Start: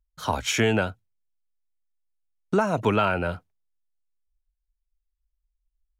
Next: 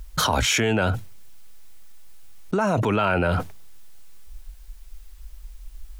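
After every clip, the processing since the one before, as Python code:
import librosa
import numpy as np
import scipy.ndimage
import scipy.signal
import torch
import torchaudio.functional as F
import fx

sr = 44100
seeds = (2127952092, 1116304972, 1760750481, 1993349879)

y = fx.env_flatten(x, sr, amount_pct=100)
y = y * 10.0 ** (-3.0 / 20.0)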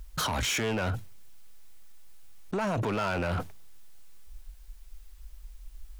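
y = np.clip(10.0 ** (20.0 / 20.0) * x, -1.0, 1.0) / 10.0 ** (20.0 / 20.0)
y = y * 10.0 ** (-5.5 / 20.0)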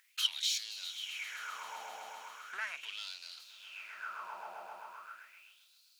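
y = fx.echo_swell(x, sr, ms=131, loudest=5, wet_db=-16.0)
y = fx.filter_lfo_highpass(y, sr, shape='sine', hz=0.38, low_hz=790.0, high_hz=4300.0, q=6.0)
y = y * 10.0 ** (-8.0 / 20.0)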